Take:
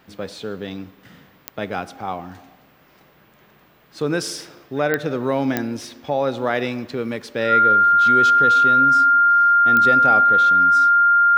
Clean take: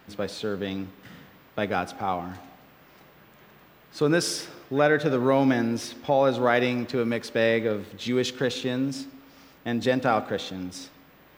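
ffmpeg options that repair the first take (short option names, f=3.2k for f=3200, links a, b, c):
-af "adeclick=t=4,bandreject=f=1.4k:w=30"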